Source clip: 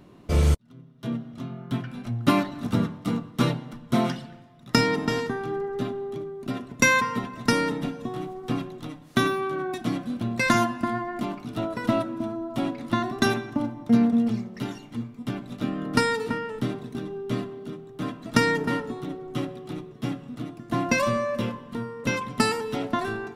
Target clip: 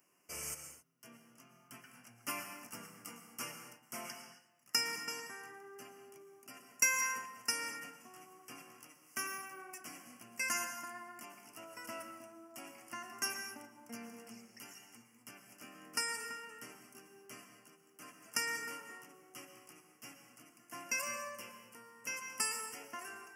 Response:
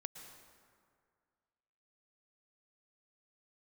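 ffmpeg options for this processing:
-filter_complex "[0:a]asuperstop=centerf=3800:order=8:qfactor=2,aderivative[s0];[1:a]atrim=start_sample=2205,afade=t=out:st=0.33:d=0.01,atrim=end_sample=14994[s1];[s0][s1]afir=irnorm=-1:irlink=0,volume=1.41"

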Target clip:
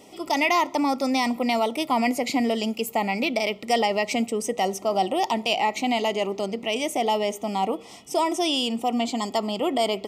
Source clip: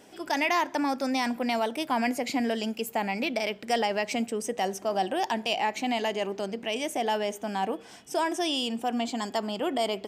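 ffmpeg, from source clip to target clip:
-af "asuperstop=centerf=1600:order=12:qfactor=3.5,volume=1.68"

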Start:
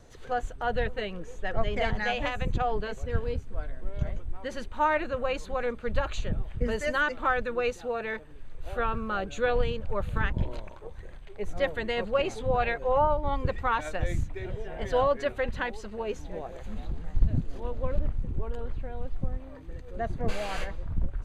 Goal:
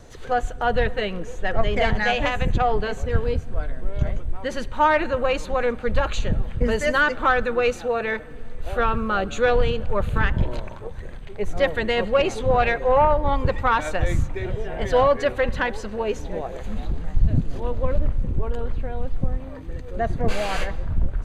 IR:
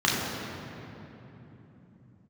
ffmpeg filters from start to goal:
-filter_complex "[0:a]asoftclip=type=tanh:threshold=0.168,asplit=2[s0][s1];[1:a]atrim=start_sample=2205,adelay=64[s2];[s1][s2]afir=irnorm=-1:irlink=0,volume=0.0133[s3];[s0][s3]amix=inputs=2:normalize=0,volume=2.51"

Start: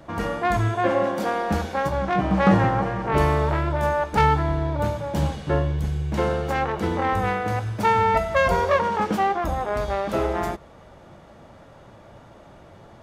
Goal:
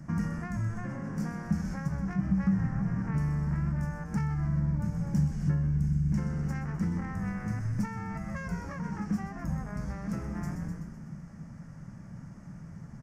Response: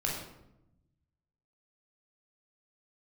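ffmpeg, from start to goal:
-filter_complex "[0:a]asplit=2[s0][s1];[s1]asplit=6[s2][s3][s4][s5][s6][s7];[s2]adelay=126,afreqshift=-120,volume=0.335[s8];[s3]adelay=252,afreqshift=-240,volume=0.18[s9];[s4]adelay=378,afreqshift=-360,volume=0.0977[s10];[s5]adelay=504,afreqshift=-480,volume=0.0525[s11];[s6]adelay=630,afreqshift=-600,volume=0.0285[s12];[s7]adelay=756,afreqshift=-720,volume=0.0153[s13];[s8][s9][s10][s11][s12][s13]amix=inputs=6:normalize=0[s14];[s0][s14]amix=inputs=2:normalize=0,acompressor=threshold=0.0355:ratio=6,firequalizer=gain_entry='entry(100,0);entry(160,12);entry(370,-14);entry(610,-16);entry(1000,-11);entry(1800,-4);entry(3600,-25);entry(5300,1);entry(12000,-7)':delay=0.05:min_phase=1"

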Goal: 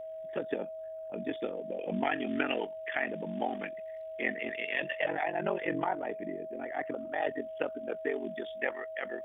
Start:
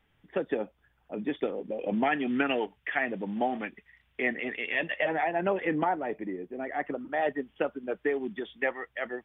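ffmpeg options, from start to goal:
-af "crystalizer=i=2:c=0,aeval=exprs='val(0)*sin(2*PI*23*n/s)':c=same,aeval=exprs='val(0)+0.0141*sin(2*PI*640*n/s)':c=same,volume=0.794"

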